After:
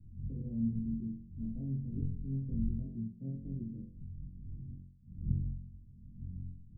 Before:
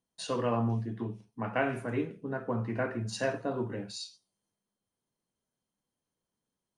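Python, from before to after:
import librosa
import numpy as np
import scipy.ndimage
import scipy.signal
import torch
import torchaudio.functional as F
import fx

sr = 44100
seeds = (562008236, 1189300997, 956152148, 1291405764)

y = fx.dmg_wind(x, sr, seeds[0], corner_hz=140.0, level_db=-42.0)
y = scipy.signal.sosfilt(scipy.signal.cheby2(4, 80, 1300.0, 'lowpass', fs=sr, output='sos'), y)
y = fx.room_flutter(y, sr, wall_m=3.8, rt60_s=0.56)
y = y * librosa.db_to_amplitude(-2.5)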